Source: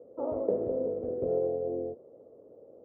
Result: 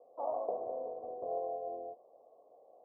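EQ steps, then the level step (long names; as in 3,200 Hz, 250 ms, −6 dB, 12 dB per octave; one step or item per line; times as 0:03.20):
formant resonators in series a
low-shelf EQ 370 Hz −11 dB
+13.5 dB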